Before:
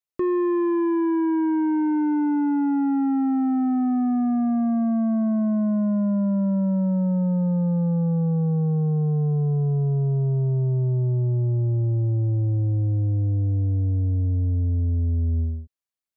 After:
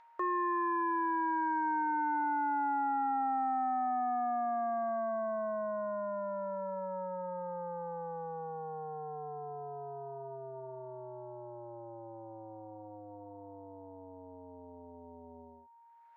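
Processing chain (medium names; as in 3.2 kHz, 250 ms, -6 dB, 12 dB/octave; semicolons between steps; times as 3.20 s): Chebyshev band-pass 720–1700 Hz, order 2; in parallel at +2 dB: upward compressor, threshold -46 dBFS; on the sum: whistle 930 Hz -54 dBFS; trim -3.5 dB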